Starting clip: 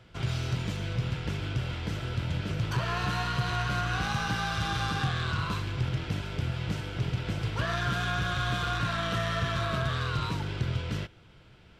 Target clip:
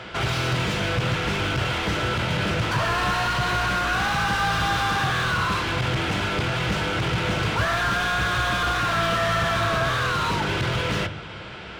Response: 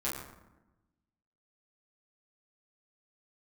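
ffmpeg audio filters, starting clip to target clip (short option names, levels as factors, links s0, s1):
-filter_complex "[0:a]aresample=22050,aresample=44100,asplit=2[s0][s1];[s1]highpass=f=720:p=1,volume=25.1,asoftclip=type=tanh:threshold=0.0944[s2];[s0][s2]amix=inputs=2:normalize=0,lowpass=f=2400:p=1,volume=0.501,asplit=2[s3][s4];[s4]lowshelf=f=190:g=11[s5];[1:a]atrim=start_sample=2205[s6];[s5][s6]afir=irnorm=-1:irlink=0,volume=0.119[s7];[s3][s7]amix=inputs=2:normalize=0,volume=1.41"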